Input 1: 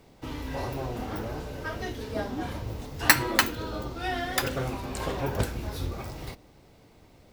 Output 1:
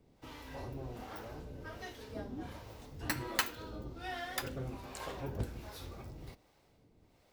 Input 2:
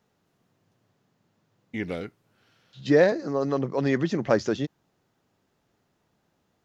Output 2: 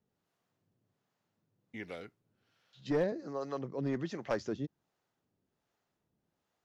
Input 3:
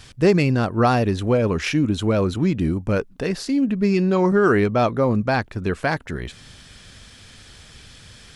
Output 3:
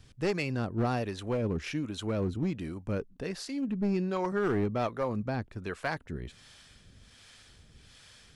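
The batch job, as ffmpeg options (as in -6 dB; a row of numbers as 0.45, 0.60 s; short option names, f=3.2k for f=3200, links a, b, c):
-filter_complex "[0:a]acrossover=split=480[a][b];[a]aeval=exprs='val(0)*(1-0.7/2+0.7/2*cos(2*PI*1.3*n/s))':c=same[c];[b]aeval=exprs='val(0)*(1-0.7/2-0.7/2*cos(2*PI*1.3*n/s))':c=same[d];[c][d]amix=inputs=2:normalize=0,acrossover=split=2900[e][f];[e]aeval=exprs='clip(val(0),-1,0.106)':c=same[g];[g][f]amix=inputs=2:normalize=0,volume=-8dB"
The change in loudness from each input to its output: -12.0, -12.0, -12.5 LU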